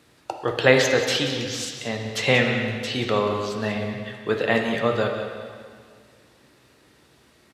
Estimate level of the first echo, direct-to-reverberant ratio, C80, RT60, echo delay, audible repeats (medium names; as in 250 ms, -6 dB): -12.0 dB, 2.0 dB, 4.5 dB, 2.0 s, 183 ms, 1